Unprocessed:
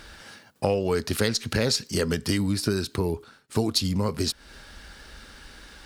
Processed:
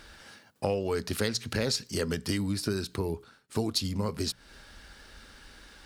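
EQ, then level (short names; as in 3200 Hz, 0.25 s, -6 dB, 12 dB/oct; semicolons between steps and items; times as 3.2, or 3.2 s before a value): notches 60/120/180 Hz; -5.0 dB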